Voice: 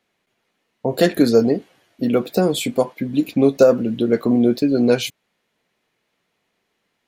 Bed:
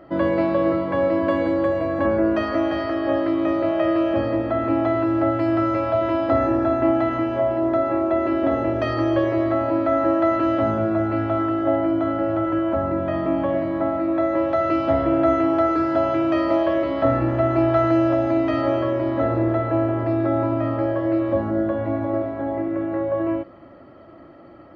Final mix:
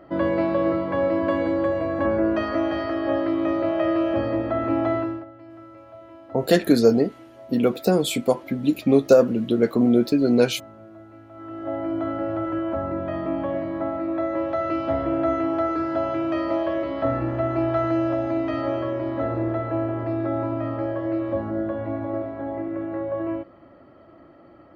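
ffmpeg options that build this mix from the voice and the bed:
-filter_complex "[0:a]adelay=5500,volume=-2dB[a];[1:a]volume=17dB,afade=t=out:st=4.94:d=0.31:silence=0.0841395,afade=t=in:st=11.33:d=0.69:silence=0.112202[b];[a][b]amix=inputs=2:normalize=0"

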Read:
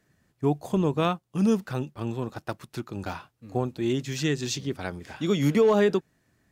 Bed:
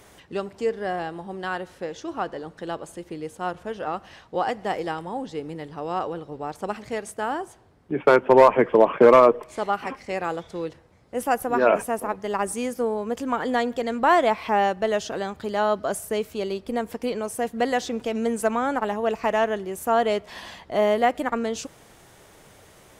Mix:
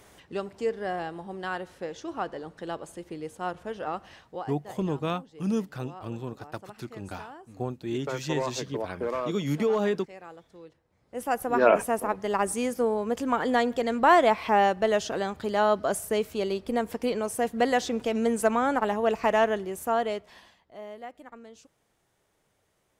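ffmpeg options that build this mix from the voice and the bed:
-filter_complex "[0:a]adelay=4050,volume=-5dB[a];[1:a]volume=13.5dB,afade=t=out:st=4.12:d=0.38:silence=0.199526,afade=t=in:st=10.84:d=0.88:silence=0.141254,afade=t=out:st=19.46:d=1.09:silence=0.0944061[b];[a][b]amix=inputs=2:normalize=0"

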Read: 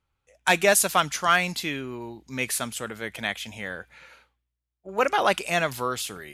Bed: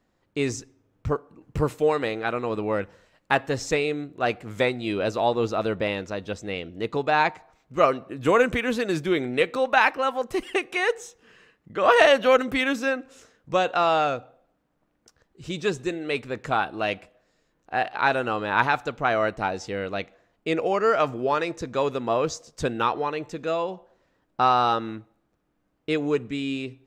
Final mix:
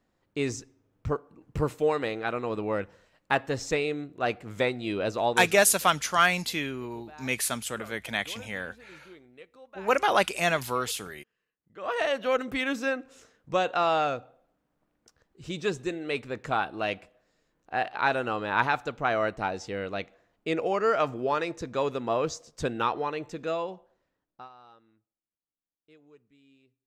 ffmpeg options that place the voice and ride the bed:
-filter_complex "[0:a]adelay=4900,volume=-1dB[a];[1:a]volume=20.5dB,afade=t=out:st=5.26:d=0.35:silence=0.0630957,afade=t=in:st=11.56:d=1.31:silence=0.0630957,afade=t=out:st=23.46:d=1.03:silence=0.0354813[b];[a][b]amix=inputs=2:normalize=0"

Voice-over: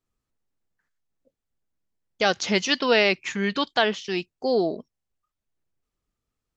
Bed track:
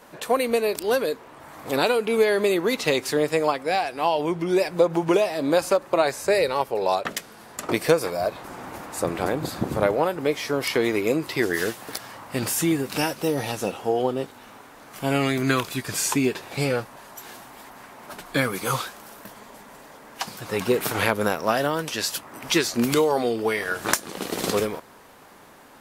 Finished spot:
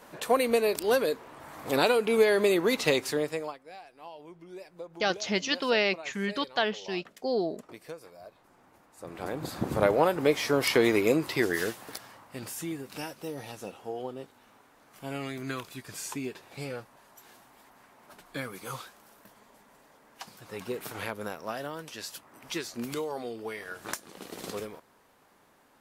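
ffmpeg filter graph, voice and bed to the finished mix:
-filter_complex "[0:a]adelay=2800,volume=-6dB[a];[1:a]volume=20.5dB,afade=t=out:st=2.89:d=0.7:silence=0.0891251,afade=t=in:st=8.97:d=1.13:silence=0.0707946,afade=t=out:st=10.92:d=1.37:silence=0.223872[b];[a][b]amix=inputs=2:normalize=0"

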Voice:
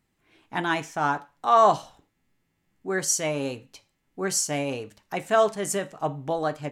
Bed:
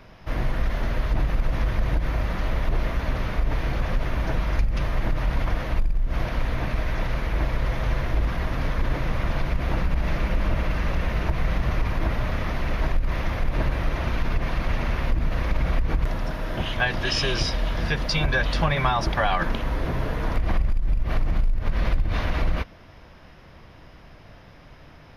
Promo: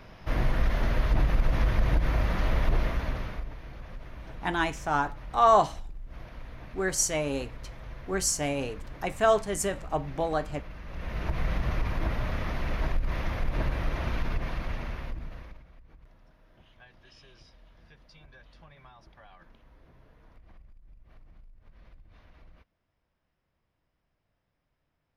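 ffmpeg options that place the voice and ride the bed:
-filter_complex "[0:a]adelay=3900,volume=-2dB[a];[1:a]volume=12dB,afade=t=out:st=2.69:d=0.85:silence=0.141254,afade=t=in:st=10.87:d=0.51:silence=0.223872,afade=t=out:st=14.16:d=1.48:silence=0.0473151[b];[a][b]amix=inputs=2:normalize=0"

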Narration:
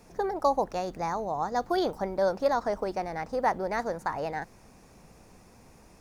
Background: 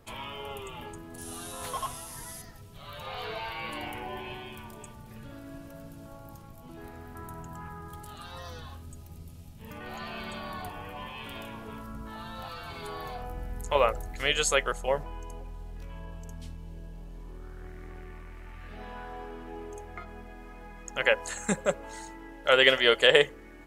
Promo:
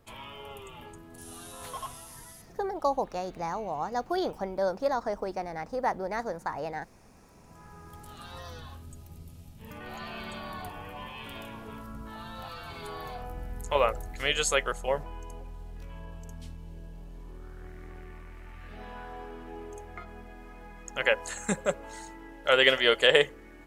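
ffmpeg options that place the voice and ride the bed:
-filter_complex "[0:a]adelay=2400,volume=-2.5dB[a];[1:a]volume=16.5dB,afade=t=out:st=2.12:d=0.81:silence=0.133352,afade=t=in:st=7.36:d=0.93:silence=0.0891251[b];[a][b]amix=inputs=2:normalize=0"

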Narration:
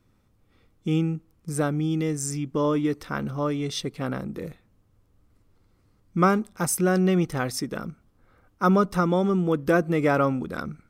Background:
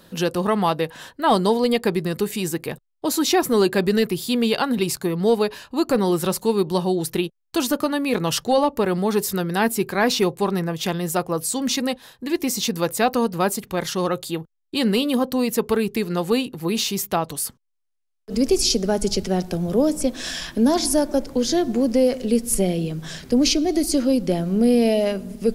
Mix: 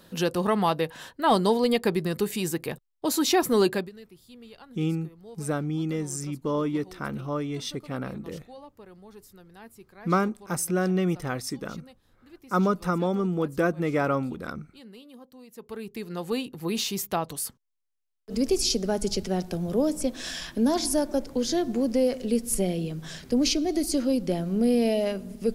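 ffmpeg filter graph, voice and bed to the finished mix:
-filter_complex "[0:a]adelay=3900,volume=-3.5dB[a];[1:a]volume=18.5dB,afade=t=out:st=3.69:d=0.21:silence=0.0630957,afade=t=in:st=15.51:d=1.21:silence=0.0794328[b];[a][b]amix=inputs=2:normalize=0"

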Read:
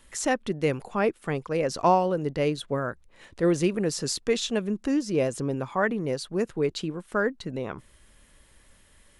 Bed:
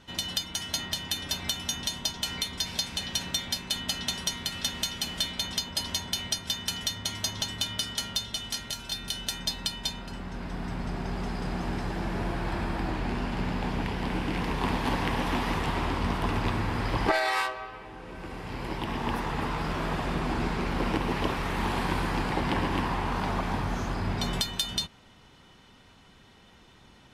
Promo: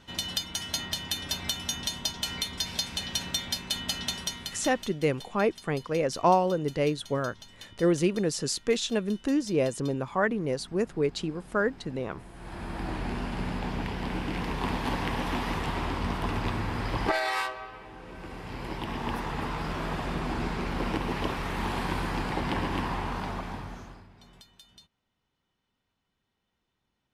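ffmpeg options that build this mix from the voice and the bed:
-filter_complex "[0:a]adelay=4400,volume=-1dB[a];[1:a]volume=15.5dB,afade=t=out:st=4.03:d=0.94:silence=0.133352,afade=t=in:st=12.33:d=0.61:silence=0.158489,afade=t=out:st=22.97:d=1.11:silence=0.0707946[b];[a][b]amix=inputs=2:normalize=0"

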